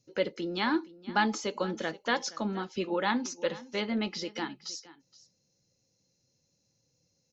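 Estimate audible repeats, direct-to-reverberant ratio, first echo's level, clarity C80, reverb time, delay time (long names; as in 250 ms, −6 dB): 1, no reverb audible, −19.0 dB, no reverb audible, no reverb audible, 471 ms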